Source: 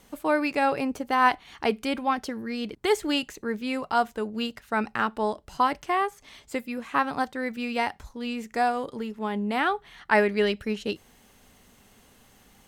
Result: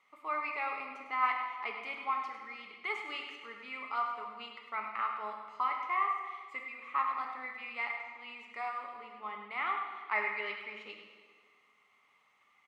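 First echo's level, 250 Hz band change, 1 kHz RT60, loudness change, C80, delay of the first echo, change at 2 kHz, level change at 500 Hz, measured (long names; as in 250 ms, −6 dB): −9.5 dB, −27.0 dB, 1.5 s, −9.0 dB, 4.5 dB, 103 ms, −7.0 dB, −20.0 dB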